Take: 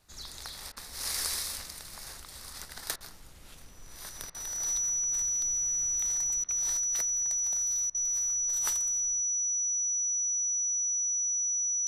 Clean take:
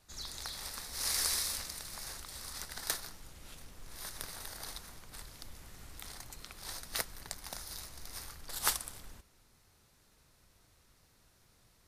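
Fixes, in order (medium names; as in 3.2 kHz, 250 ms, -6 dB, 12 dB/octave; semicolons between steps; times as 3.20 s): band-stop 5.9 kHz, Q 30; interpolate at 0.72/2.96/4.30/6.44/7.90 s, 45 ms; inverse comb 89 ms -21 dB; gain correction +6.5 dB, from 6.77 s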